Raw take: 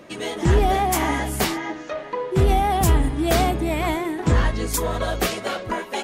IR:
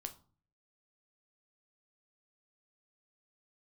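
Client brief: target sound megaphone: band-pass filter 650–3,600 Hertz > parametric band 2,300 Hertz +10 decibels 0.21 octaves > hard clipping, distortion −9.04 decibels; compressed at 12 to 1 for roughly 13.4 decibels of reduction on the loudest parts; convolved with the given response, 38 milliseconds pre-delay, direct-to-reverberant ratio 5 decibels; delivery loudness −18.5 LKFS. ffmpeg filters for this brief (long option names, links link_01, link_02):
-filter_complex "[0:a]acompressor=threshold=-26dB:ratio=12,asplit=2[link_01][link_02];[1:a]atrim=start_sample=2205,adelay=38[link_03];[link_02][link_03]afir=irnorm=-1:irlink=0,volume=-2dB[link_04];[link_01][link_04]amix=inputs=2:normalize=0,highpass=650,lowpass=3600,equalizer=frequency=2300:width_type=o:width=0.21:gain=10,asoftclip=type=hard:threshold=-32.5dB,volume=17dB"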